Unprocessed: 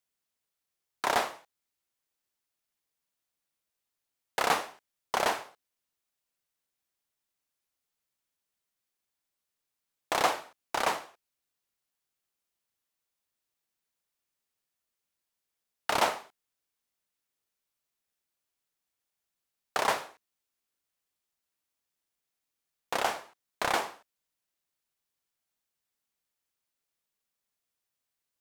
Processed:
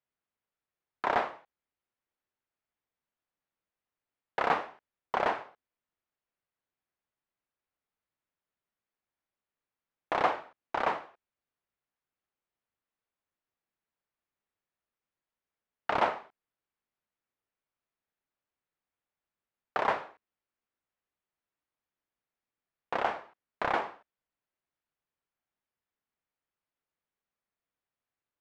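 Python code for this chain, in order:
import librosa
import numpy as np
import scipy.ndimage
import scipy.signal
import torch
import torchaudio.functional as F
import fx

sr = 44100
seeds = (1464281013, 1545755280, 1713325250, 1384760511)

y = scipy.signal.sosfilt(scipy.signal.butter(2, 2100.0, 'lowpass', fs=sr, output='sos'), x)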